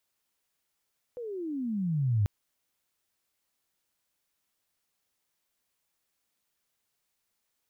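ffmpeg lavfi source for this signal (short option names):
-f lavfi -i "aevalsrc='pow(10,(-21.5+14*(t/1.09-1))/20)*sin(2*PI*503*1.09/(-28.5*log(2)/12)*(exp(-28.5*log(2)/12*t/1.09)-1))':d=1.09:s=44100"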